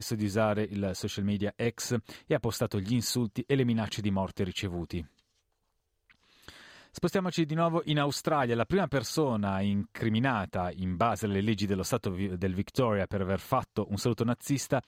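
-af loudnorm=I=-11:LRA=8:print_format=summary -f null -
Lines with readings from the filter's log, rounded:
Input Integrated:    -30.5 LUFS
Input True Peak:     -14.0 dBTP
Input LRA:             3.8 LU
Input Threshold:     -40.7 LUFS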